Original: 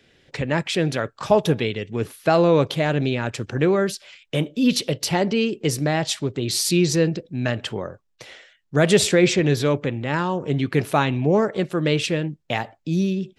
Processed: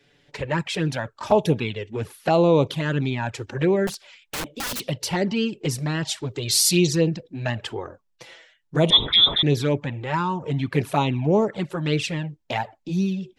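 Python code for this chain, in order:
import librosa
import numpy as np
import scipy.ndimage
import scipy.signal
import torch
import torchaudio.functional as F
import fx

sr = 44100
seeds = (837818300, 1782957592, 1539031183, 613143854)

y = fx.freq_invert(x, sr, carrier_hz=3800, at=(8.9, 9.43))
y = fx.peak_eq(y, sr, hz=920.0, db=5.5, octaves=0.32)
y = fx.env_flanger(y, sr, rest_ms=7.1, full_db=-13.5)
y = fx.overflow_wrap(y, sr, gain_db=24.0, at=(3.87, 4.8))
y = fx.high_shelf(y, sr, hz=2900.0, db=9.0, at=(6.31, 6.87))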